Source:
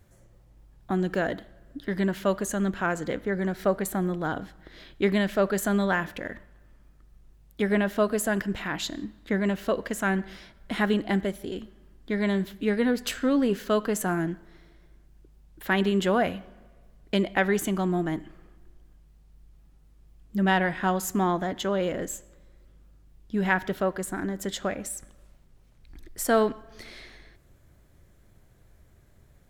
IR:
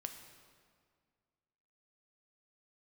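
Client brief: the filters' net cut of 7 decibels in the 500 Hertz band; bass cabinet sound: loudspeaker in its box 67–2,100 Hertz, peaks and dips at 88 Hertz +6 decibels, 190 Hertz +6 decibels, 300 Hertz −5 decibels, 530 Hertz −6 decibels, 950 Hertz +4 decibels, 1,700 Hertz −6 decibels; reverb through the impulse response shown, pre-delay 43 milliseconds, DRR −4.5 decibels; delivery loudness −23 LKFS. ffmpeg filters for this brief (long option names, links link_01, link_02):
-filter_complex "[0:a]equalizer=frequency=500:width_type=o:gain=-6.5,asplit=2[link_01][link_02];[1:a]atrim=start_sample=2205,adelay=43[link_03];[link_02][link_03]afir=irnorm=-1:irlink=0,volume=7dB[link_04];[link_01][link_04]amix=inputs=2:normalize=0,highpass=frequency=67:width=0.5412,highpass=frequency=67:width=1.3066,equalizer=frequency=88:width_type=q:width=4:gain=6,equalizer=frequency=190:width_type=q:width=4:gain=6,equalizer=frequency=300:width_type=q:width=4:gain=-5,equalizer=frequency=530:width_type=q:width=4:gain=-6,equalizer=frequency=950:width_type=q:width=4:gain=4,equalizer=frequency=1700:width_type=q:width=4:gain=-6,lowpass=frequency=2100:width=0.5412,lowpass=frequency=2100:width=1.3066,volume=-1.5dB"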